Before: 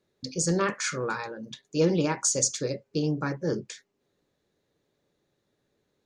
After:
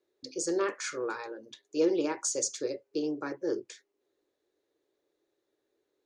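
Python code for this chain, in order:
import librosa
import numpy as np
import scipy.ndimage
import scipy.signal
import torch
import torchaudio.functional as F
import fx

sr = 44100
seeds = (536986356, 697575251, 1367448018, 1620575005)

y = fx.low_shelf_res(x, sr, hz=250.0, db=-10.5, q=3.0)
y = F.gain(torch.from_numpy(y), -6.5).numpy()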